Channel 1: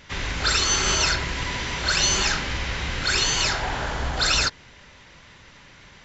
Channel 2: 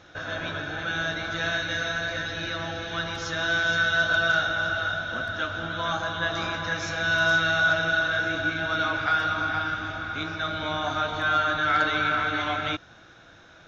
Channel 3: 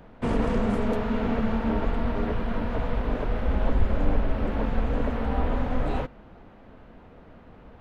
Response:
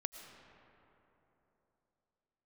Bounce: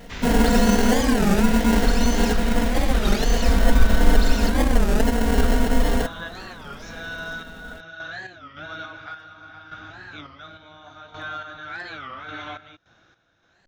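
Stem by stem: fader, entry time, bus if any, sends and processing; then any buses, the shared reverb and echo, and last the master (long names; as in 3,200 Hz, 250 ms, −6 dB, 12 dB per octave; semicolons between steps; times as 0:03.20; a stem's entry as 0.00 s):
−5.0 dB, 0.00 s, bus A, no send, no processing
−5.5 dB, 0.00 s, bus A, no send, sample-and-hold tremolo, depth 80%
+3.0 dB, 0.00 s, no bus, no send, sample-rate reduction 1,200 Hz, jitter 0%; comb filter 4.3 ms, depth 92%
bus A: 0.0 dB, downward compressor, threshold −29 dBFS, peak gain reduction 8.5 dB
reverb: not used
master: wow of a warped record 33 1/3 rpm, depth 250 cents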